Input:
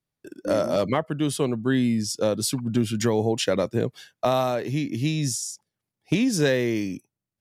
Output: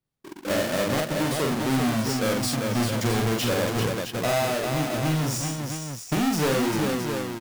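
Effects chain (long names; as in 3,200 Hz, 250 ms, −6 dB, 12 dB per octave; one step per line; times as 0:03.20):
each half-wave held at its own peak
multi-tap delay 45/310/394/666 ms −3/−19/−5/−8 dB
soft clipping −12 dBFS, distortion −17 dB
level −5.5 dB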